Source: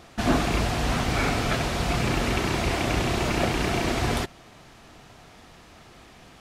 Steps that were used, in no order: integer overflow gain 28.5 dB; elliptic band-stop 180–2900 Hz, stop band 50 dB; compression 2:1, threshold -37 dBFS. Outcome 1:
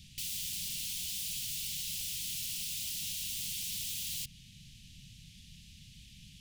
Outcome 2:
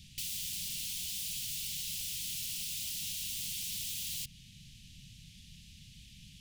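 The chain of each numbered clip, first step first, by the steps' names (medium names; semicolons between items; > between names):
integer overflow > compression > elliptic band-stop; integer overflow > elliptic band-stop > compression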